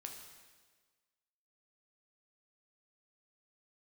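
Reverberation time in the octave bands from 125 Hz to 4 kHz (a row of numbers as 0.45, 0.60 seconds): 1.4, 1.5, 1.5, 1.4, 1.4, 1.4 seconds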